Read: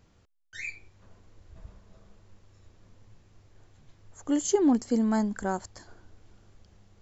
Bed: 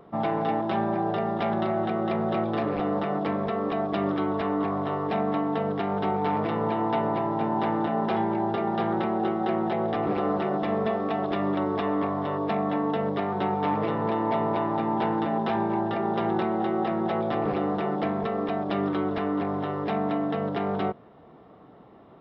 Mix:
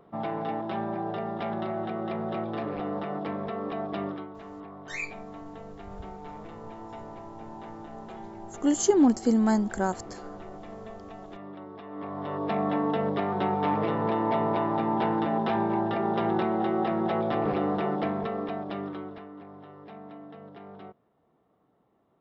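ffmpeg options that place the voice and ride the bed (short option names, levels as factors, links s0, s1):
-filter_complex "[0:a]adelay=4350,volume=1.33[s0];[1:a]volume=3.35,afade=t=out:st=4.01:d=0.28:silence=0.281838,afade=t=in:st=11.89:d=0.75:silence=0.158489,afade=t=out:st=17.85:d=1.43:silence=0.133352[s1];[s0][s1]amix=inputs=2:normalize=0"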